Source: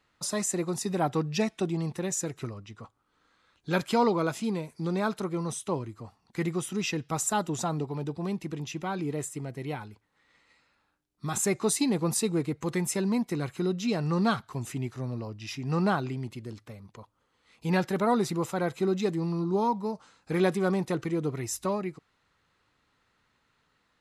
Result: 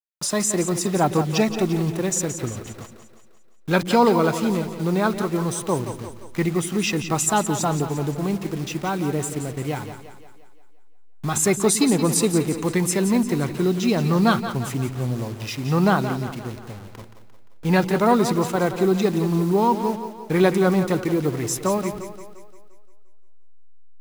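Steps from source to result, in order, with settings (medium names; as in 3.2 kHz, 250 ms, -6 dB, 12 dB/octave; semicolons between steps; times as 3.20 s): send-on-delta sampling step -42.5 dBFS; two-band feedback delay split 310 Hz, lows 110 ms, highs 174 ms, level -10 dB; trim +7.5 dB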